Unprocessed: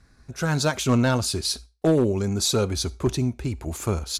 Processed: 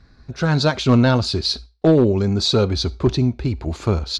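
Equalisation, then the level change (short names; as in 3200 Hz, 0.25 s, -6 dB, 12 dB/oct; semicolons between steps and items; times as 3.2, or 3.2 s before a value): tape spacing loss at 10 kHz 25 dB; bell 4300 Hz +11.5 dB 0.82 oct; +6.5 dB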